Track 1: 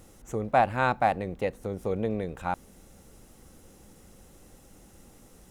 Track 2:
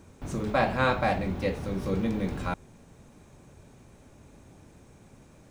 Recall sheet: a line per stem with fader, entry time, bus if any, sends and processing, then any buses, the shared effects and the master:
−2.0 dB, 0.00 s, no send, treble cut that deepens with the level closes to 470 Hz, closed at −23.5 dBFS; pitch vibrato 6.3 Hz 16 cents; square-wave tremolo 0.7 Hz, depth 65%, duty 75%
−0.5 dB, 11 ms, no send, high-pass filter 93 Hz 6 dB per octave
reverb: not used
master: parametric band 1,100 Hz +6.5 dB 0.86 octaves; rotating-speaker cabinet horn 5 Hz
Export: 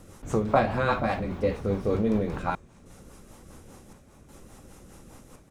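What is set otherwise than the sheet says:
stem 1 −2.0 dB → +4.5 dB
stem 2: missing high-pass filter 93 Hz 6 dB per octave

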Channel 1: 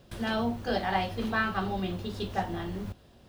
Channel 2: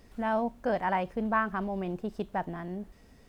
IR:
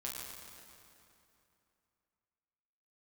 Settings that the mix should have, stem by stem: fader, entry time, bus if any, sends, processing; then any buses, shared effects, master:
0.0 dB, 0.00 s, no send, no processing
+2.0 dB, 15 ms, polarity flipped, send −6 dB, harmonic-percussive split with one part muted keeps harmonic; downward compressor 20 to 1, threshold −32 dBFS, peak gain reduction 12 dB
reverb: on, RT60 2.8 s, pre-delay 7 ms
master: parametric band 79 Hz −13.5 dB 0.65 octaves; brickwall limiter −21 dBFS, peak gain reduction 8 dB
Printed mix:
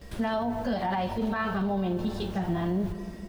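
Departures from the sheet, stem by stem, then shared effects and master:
stem 2 +2.0 dB → +10.5 dB
master: missing parametric band 79 Hz −13.5 dB 0.65 octaves

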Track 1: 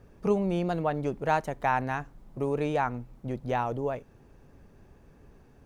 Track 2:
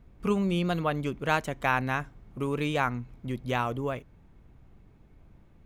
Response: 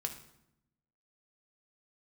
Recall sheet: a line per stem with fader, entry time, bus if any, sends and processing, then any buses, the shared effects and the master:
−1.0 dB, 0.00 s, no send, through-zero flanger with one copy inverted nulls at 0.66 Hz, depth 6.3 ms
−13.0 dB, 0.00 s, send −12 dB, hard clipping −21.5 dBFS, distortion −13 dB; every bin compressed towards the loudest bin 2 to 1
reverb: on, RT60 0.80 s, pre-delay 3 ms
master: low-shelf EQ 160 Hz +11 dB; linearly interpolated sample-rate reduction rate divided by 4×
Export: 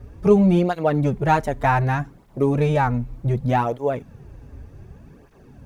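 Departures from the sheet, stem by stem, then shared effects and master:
stem 1 −1.0 dB → +9.5 dB
master: missing linearly interpolated sample-rate reduction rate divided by 4×

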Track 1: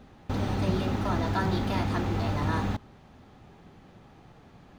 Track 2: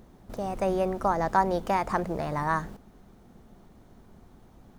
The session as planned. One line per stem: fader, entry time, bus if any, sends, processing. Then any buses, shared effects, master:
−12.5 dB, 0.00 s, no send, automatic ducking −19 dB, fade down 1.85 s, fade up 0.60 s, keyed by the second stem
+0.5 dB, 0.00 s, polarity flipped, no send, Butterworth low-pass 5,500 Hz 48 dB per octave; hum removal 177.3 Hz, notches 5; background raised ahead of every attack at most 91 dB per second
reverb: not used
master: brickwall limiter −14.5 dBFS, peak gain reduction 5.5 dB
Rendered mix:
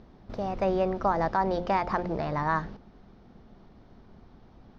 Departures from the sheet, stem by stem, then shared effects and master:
stem 1 −12.5 dB → −20.5 dB
stem 2: missing background raised ahead of every attack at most 91 dB per second

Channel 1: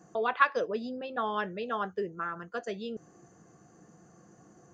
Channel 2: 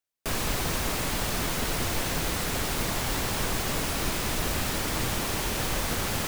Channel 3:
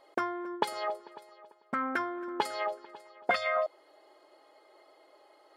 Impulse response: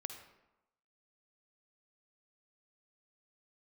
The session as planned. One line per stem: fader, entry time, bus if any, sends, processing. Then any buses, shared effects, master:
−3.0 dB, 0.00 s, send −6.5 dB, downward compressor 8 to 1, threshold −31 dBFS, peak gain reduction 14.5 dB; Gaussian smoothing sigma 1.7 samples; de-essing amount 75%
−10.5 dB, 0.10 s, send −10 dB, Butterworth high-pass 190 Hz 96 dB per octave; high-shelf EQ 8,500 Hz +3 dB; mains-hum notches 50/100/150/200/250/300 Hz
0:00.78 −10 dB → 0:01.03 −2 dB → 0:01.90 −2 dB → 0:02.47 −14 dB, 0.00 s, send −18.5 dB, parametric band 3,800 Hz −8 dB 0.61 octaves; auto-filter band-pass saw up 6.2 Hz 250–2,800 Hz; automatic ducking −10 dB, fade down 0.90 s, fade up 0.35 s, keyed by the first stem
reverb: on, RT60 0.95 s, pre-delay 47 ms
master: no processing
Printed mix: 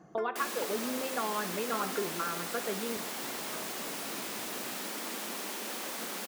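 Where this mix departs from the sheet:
stem 1: send −6.5 dB → −0.5 dB
stem 3: missing auto-filter band-pass saw up 6.2 Hz 250–2,800 Hz

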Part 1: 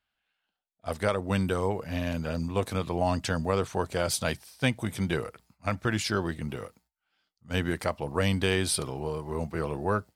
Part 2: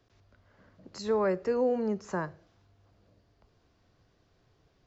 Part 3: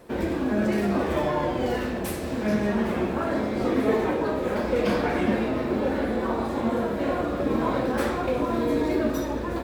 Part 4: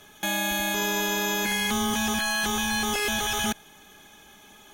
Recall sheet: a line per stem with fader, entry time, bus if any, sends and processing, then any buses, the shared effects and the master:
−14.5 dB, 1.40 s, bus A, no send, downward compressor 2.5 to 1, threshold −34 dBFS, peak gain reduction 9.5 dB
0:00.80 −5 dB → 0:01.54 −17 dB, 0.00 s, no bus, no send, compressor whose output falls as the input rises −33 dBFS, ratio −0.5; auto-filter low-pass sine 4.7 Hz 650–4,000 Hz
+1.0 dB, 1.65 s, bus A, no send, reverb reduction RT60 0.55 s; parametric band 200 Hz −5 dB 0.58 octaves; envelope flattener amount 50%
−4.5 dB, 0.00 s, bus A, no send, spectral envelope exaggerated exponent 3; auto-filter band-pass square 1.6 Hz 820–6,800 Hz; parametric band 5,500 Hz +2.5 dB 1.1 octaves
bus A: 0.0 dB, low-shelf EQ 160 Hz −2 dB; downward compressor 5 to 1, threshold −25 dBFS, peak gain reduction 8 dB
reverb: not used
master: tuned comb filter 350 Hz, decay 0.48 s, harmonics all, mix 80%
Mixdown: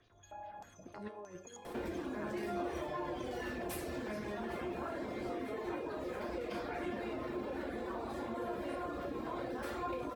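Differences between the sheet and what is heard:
stem 1: entry 1.40 s → 0.00 s
stem 2 −5.0 dB → +5.5 dB

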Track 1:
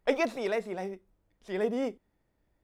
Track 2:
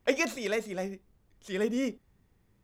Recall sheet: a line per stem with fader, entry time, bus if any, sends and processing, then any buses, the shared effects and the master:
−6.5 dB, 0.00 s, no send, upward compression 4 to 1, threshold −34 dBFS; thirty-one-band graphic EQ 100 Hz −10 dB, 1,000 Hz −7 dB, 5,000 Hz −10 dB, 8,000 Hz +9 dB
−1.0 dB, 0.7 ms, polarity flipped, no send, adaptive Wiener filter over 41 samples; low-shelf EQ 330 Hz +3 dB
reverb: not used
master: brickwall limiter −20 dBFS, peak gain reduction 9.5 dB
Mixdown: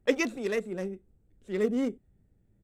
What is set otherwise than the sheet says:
stem 1: missing upward compression 4 to 1, threshold −34 dBFS
master: missing brickwall limiter −20 dBFS, peak gain reduction 9.5 dB

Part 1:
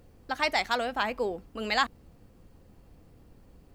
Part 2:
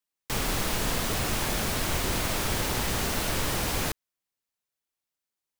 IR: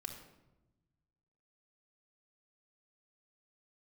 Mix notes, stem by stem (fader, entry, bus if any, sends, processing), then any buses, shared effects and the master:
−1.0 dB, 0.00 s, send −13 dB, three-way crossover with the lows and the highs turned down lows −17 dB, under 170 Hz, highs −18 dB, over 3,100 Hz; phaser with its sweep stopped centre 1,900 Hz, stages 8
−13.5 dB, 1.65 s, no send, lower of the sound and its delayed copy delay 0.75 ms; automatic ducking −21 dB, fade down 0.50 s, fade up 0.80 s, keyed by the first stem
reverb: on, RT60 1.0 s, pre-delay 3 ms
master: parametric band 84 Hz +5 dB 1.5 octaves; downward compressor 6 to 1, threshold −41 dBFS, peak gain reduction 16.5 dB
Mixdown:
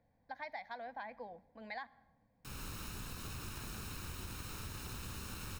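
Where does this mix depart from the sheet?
stem 1 −1.0 dB → −11.0 dB
stem 2: entry 1.65 s → 2.15 s

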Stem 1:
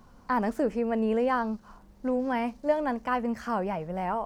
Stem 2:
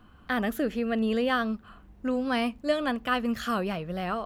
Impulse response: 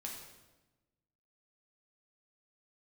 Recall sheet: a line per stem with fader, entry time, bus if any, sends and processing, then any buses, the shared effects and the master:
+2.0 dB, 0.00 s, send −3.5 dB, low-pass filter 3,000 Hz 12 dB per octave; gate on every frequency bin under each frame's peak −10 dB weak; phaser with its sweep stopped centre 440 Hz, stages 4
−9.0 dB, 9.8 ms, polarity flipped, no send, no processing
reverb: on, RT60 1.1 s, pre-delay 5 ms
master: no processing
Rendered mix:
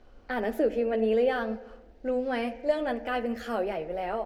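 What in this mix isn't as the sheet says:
stem 1: missing gate on every frequency bin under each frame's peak −10 dB weak
master: extra parametric band 120 Hz −6 dB 2.5 octaves

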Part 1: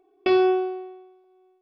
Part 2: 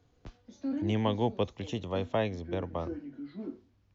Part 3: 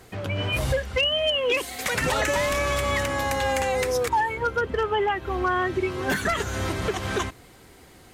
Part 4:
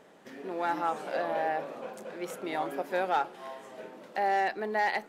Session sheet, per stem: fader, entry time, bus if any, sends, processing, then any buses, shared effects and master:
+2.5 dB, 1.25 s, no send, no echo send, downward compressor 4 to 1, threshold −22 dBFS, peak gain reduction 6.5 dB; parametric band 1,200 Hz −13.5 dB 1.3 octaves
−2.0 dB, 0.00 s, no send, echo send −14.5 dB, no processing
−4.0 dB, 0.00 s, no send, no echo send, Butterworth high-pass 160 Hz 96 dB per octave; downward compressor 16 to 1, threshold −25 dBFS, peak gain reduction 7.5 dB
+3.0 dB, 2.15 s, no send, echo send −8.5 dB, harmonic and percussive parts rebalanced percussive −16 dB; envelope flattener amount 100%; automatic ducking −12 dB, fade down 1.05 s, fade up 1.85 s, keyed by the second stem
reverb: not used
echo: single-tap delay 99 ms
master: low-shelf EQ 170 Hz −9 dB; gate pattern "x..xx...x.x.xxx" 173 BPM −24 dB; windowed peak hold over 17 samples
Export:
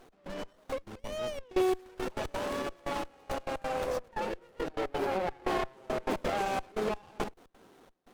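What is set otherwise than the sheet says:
stem 2 −2.0 dB → −14.0 dB
stem 4 +3.0 dB → −4.0 dB

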